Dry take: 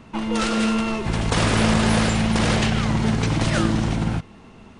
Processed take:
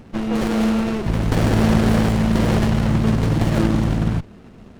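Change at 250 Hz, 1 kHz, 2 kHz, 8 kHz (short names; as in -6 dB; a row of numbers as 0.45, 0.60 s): +3.0, -1.5, -3.5, -6.0 dB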